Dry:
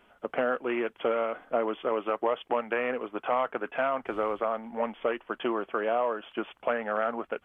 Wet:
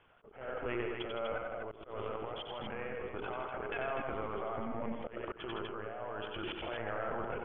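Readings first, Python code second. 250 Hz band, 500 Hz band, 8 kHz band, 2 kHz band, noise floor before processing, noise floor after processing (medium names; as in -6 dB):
-8.5 dB, -10.5 dB, no reading, -8.0 dB, -64 dBFS, -56 dBFS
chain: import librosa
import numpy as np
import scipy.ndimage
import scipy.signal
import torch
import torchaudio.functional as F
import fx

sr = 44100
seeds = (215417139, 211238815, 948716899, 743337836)

p1 = fx.hum_notches(x, sr, base_hz=60, count=7)
p2 = fx.rider(p1, sr, range_db=4, speed_s=0.5)
p3 = fx.lpc_vocoder(p2, sr, seeds[0], excitation='pitch_kept', order=16)
p4 = fx.level_steps(p3, sr, step_db=23)
p5 = fx.tremolo_random(p4, sr, seeds[1], hz=3.5, depth_pct=55)
p6 = p5 + fx.echo_multitap(p5, sr, ms=(92, 162, 247), db=(-4.5, -8.0, -5.5), dry=0)
p7 = fx.auto_swell(p6, sr, attack_ms=164.0)
y = F.gain(torch.from_numpy(p7), 8.0).numpy()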